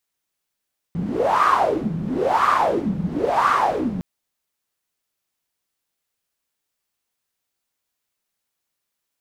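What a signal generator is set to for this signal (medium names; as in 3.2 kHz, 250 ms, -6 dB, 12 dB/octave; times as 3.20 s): wind-like swept noise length 3.06 s, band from 170 Hz, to 1.2 kHz, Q 8, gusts 3, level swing 7 dB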